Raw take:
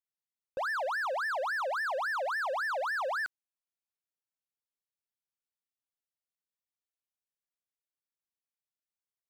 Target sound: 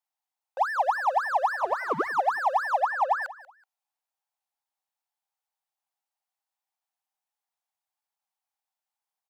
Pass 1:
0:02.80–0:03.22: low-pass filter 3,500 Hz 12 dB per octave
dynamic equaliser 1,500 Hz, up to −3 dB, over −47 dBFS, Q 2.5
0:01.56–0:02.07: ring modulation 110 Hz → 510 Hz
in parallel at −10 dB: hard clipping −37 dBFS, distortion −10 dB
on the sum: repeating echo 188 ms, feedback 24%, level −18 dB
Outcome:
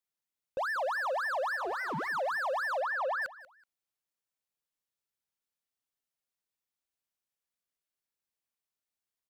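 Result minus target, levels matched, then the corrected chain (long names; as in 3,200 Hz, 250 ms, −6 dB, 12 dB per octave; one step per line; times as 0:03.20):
1,000 Hz band −3.5 dB
0:02.80–0:03.22: low-pass filter 3,500 Hz 12 dB per octave
dynamic equaliser 1,500 Hz, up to −3 dB, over −47 dBFS, Q 2.5
high-pass with resonance 800 Hz, resonance Q 5.9
0:01.56–0:02.07: ring modulation 110 Hz → 510 Hz
in parallel at −10 dB: hard clipping −37 dBFS, distortion −2 dB
on the sum: repeating echo 188 ms, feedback 24%, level −18 dB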